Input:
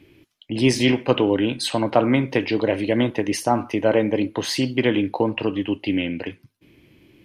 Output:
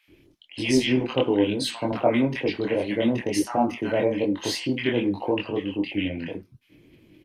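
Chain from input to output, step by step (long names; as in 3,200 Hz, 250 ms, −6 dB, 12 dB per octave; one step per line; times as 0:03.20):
pitch vibrato 7.3 Hz 20 cents
multiband delay without the direct sound highs, lows 80 ms, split 1,100 Hz
multi-voice chorus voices 6, 1.2 Hz, delay 23 ms, depth 3.3 ms
0:01.92–0:02.50: multiband upward and downward expander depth 40%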